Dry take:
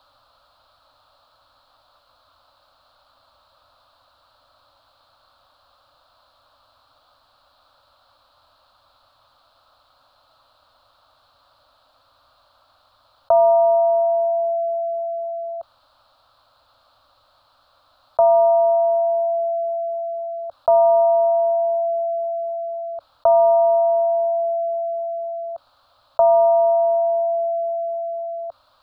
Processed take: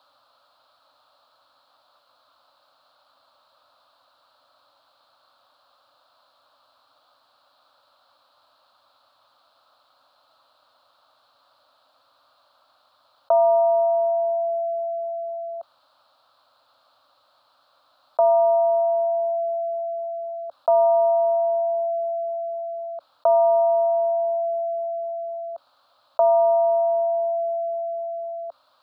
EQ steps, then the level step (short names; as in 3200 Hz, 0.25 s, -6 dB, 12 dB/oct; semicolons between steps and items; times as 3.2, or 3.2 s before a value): HPF 200 Hz 12 dB/oct; -3.0 dB